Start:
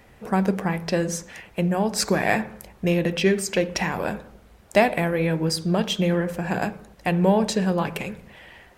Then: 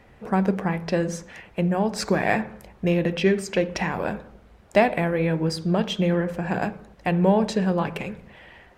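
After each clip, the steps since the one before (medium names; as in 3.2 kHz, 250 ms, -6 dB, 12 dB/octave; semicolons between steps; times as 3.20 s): low-pass 3.1 kHz 6 dB/octave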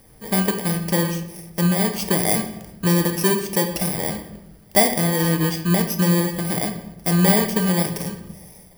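bit-reversed sample order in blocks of 32 samples; reverberation RT60 0.95 s, pre-delay 6 ms, DRR 7.5 dB; trim +1.5 dB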